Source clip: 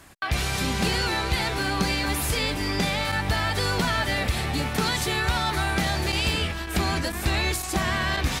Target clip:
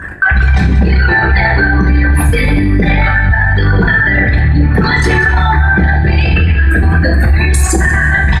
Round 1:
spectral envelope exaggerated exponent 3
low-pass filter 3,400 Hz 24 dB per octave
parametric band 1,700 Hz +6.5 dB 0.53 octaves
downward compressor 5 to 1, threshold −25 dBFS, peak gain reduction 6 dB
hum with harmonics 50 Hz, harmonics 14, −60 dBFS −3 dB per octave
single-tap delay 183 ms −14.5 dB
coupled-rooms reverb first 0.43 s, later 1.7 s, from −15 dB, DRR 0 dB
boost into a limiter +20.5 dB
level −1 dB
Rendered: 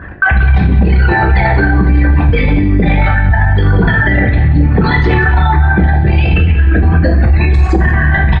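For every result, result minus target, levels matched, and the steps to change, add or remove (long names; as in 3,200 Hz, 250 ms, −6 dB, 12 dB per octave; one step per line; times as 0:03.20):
4,000 Hz band −4.0 dB; 2,000 Hz band −3.5 dB
remove: low-pass filter 3,400 Hz 24 dB per octave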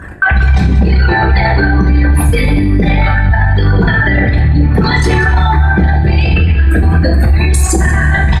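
2,000 Hz band −3.5 dB
change: parametric band 1,700 Hz +16 dB 0.53 octaves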